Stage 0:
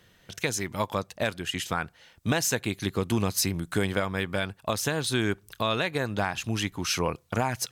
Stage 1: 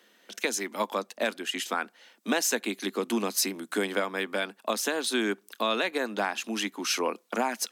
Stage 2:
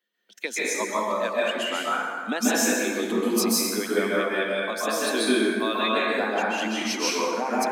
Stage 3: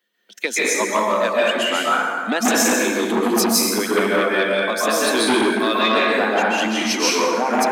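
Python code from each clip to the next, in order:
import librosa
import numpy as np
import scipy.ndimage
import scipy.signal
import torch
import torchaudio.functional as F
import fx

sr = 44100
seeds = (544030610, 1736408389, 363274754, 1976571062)

y1 = scipy.signal.sosfilt(scipy.signal.butter(12, 210.0, 'highpass', fs=sr, output='sos'), x)
y2 = fx.bin_expand(y1, sr, power=1.5)
y2 = fx.rev_plate(y2, sr, seeds[0], rt60_s=2.0, hf_ratio=0.55, predelay_ms=120, drr_db=-7.5)
y3 = fx.transformer_sat(y2, sr, knee_hz=1400.0)
y3 = y3 * librosa.db_to_amplitude(8.0)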